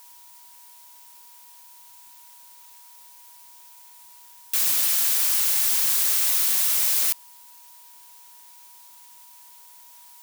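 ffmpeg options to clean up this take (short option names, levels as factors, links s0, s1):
-af "bandreject=f=960:w=30,afftdn=nr=22:nf=-49"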